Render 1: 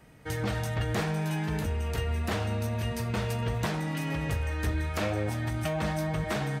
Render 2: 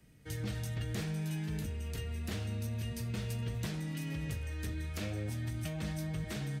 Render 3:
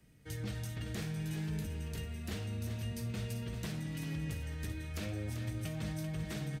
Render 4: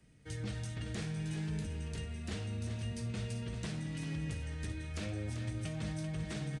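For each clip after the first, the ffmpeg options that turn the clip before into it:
ffmpeg -i in.wav -filter_complex "[0:a]equalizer=frequency=910:width_type=o:width=2.1:gain=-14,acrossover=split=110[link_01][link_02];[link_01]alimiter=level_in=10.5dB:limit=-24dB:level=0:latency=1,volume=-10.5dB[link_03];[link_03][link_02]amix=inputs=2:normalize=0,volume=-4dB" out.wav
ffmpeg -i in.wav -af "aecho=1:1:389|778|1167:0.376|0.105|0.0295,volume=-2dB" out.wav
ffmpeg -i in.wav -af "aresample=22050,aresample=44100" out.wav

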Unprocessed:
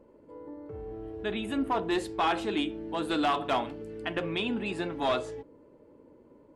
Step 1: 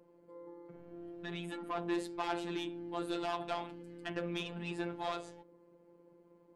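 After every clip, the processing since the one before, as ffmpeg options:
ffmpeg -i in.wav -af "highpass=63,asoftclip=type=tanh:threshold=-25dB,afftfilt=real='hypot(re,im)*cos(PI*b)':imag='0':win_size=1024:overlap=0.75,volume=-2.5dB" out.wav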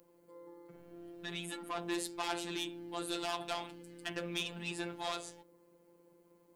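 ffmpeg -i in.wav -af "crystalizer=i=4.5:c=0,volume=-3dB" out.wav

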